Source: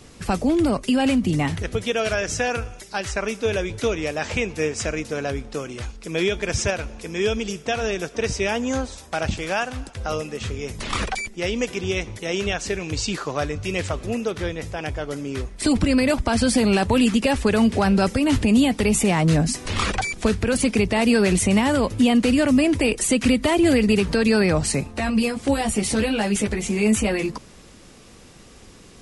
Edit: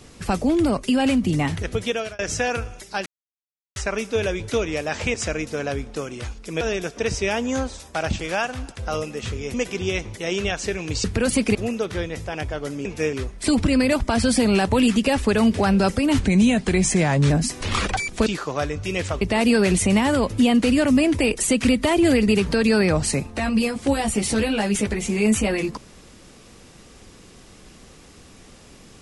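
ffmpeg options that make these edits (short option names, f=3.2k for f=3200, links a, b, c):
-filter_complex "[0:a]asplit=14[a][b][c][d][e][f][g][h][i][j][k][l][m][n];[a]atrim=end=2.19,asetpts=PTS-STARTPTS,afade=t=out:st=1.89:d=0.3[o];[b]atrim=start=2.19:end=3.06,asetpts=PTS-STARTPTS,afade=t=in:d=0.004:c=hsin,afade=t=out:st=0.866:d=0.004:c=hsin,apad=pad_dur=0.7[p];[c]atrim=start=3.06:end=4.442,asetpts=PTS-STARTPTS,afade=t=in:d=0.004:c=hsin[q];[d]atrim=start=4.718:end=6.192[r];[e]atrim=start=7.788:end=10.722[s];[f]atrim=start=11.558:end=13.062[t];[g]atrim=start=20.308:end=20.822[u];[h]atrim=start=14.008:end=15.312[v];[i]atrim=start=4.438:end=4.722[w];[j]atrim=start=15.308:end=18.374[x];[k]atrim=start=18.37:end=19.35,asetpts=PTS-STARTPTS,asetrate=38808,aresample=44100,atrim=end_sample=49111,asetpts=PTS-STARTPTS[y];[l]atrim=start=19.346:end=20.312[z];[m]atrim=start=13.058:end=14.012[aa];[n]atrim=start=20.818[ab];[o][p][q]concat=n=3:v=0:a=1[ac];[ac][r]acrossfade=d=0.004:c1=hsin:c2=hsin[ad];[ad][s]acrossfade=d=0.004:c1=hsin:c2=hsin[ae];[ae][t]acrossfade=d=0.004:c1=hsin:c2=hsin[af];[af][u]acrossfade=d=0.004:c1=hsin:c2=hsin[ag];[ag][v]acrossfade=d=0.004:c1=hsin:c2=hsin[ah];[ah][w]acrossfade=d=0.004:c1=hsin:c2=hsin[ai];[ai][x]acrossfade=d=0.004:c1=hsin:c2=hsin[aj];[aj][y]acrossfade=d=0.004:c1=hsin:c2=hsin[ak];[ak][z]acrossfade=d=0.004:c1=hsin:c2=hsin[al];[al][aa]acrossfade=d=0.004:c1=hsin:c2=hsin[am];[am][ab]acrossfade=d=0.004:c1=hsin:c2=hsin"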